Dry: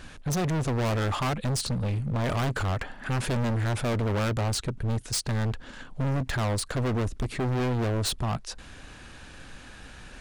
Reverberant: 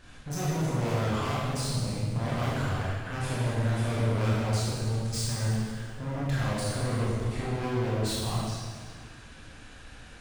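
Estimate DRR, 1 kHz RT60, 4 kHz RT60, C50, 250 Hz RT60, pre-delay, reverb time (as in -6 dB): -7.5 dB, 1.7 s, 1.6 s, -3.5 dB, 2.2 s, 19 ms, 1.8 s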